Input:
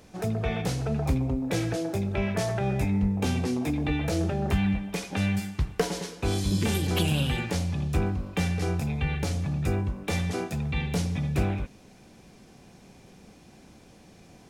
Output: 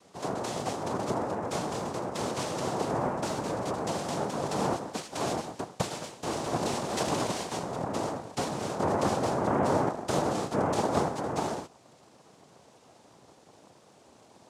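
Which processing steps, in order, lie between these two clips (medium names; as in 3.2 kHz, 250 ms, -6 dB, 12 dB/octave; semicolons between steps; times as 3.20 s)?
8.79–11.08 s: bass shelf 330 Hz +8.5 dB; noise-vocoded speech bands 2; trim -4 dB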